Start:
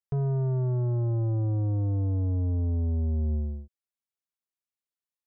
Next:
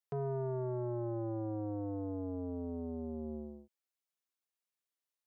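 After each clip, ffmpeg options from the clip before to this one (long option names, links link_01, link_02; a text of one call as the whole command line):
ffmpeg -i in.wav -af "highpass=290" out.wav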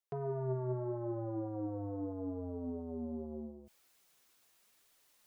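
ffmpeg -i in.wav -af "flanger=delay=1.1:depth=8:regen=54:speed=0.81:shape=triangular,areverse,acompressor=mode=upward:threshold=-54dB:ratio=2.5,areverse,volume=3.5dB" out.wav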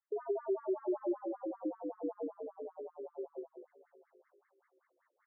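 ffmpeg -i in.wav -af "aecho=1:1:707|1414:0.126|0.0302,afftfilt=real='re*between(b*sr/1024,370*pow(1600/370,0.5+0.5*sin(2*PI*5.2*pts/sr))/1.41,370*pow(1600/370,0.5+0.5*sin(2*PI*5.2*pts/sr))*1.41)':imag='im*between(b*sr/1024,370*pow(1600/370,0.5+0.5*sin(2*PI*5.2*pts/sr))/1.41,370*pow(1600/370,0.5+0.5*sin(2*PI*5.2*pts/sr))*1.41)':win_size=1024:overlap=0.75,volume=6.5dB" out.wav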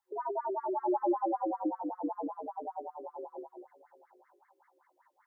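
ffmpeg -i in.wav -af "superequalizer=7b=0.355:9b=3.98,volume=5dB" out.wav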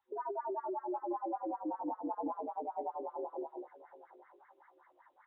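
ffmpeg -i in.wav -af "areverse,acompressor=threshold=-39dB:ratio=10,areverse,volume=4dB" -ar 24000 -c:a aac -b:a 16k out.aac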